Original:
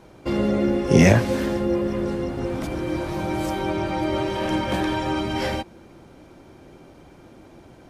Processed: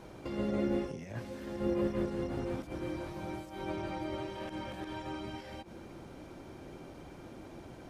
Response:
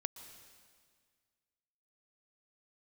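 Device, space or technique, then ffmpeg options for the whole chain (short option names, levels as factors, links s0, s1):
de-esser from a sidechain: -filter_complex "[0:a]asplit=2[s0][s1];[s1]highpass=f=5100:w=0.5412,highpass=f=5100:w=1.3066,apad=whole_len=348150[s2];[s0][s2]sidechaincompress=threshold=0.00112:ratio=12:attack=1.4:release=87,volume=0.841"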